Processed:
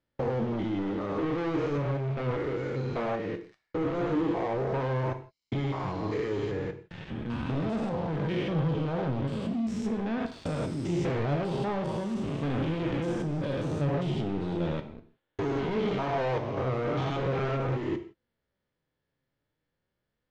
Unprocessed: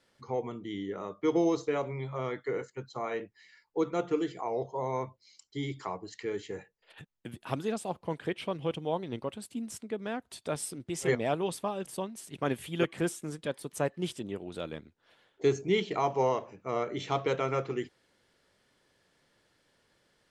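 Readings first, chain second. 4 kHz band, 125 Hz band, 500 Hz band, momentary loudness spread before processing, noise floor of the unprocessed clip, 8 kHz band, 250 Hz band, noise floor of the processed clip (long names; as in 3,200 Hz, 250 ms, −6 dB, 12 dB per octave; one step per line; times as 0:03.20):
−1.0 dB, +9.5 dB, +1.0 dB, 10 LU, −72 dBFS, −11.0 dB, +5.0 dB, −84 dBFS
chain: spectrum averaged block by block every 200 ms
low-shelf EQ 210 Hz +11 dB
leveller curve on the samples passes 5
downward compressor, threshold −24 dBFS, peak gain reduction 6 dB
flanger 0.39 Hz, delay 3 ms, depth 4.7 ms, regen +67%
high-frequency loss of the air 160 metres
reverb whose tail is shaped and stops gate 190 ms falling, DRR 7.5 dB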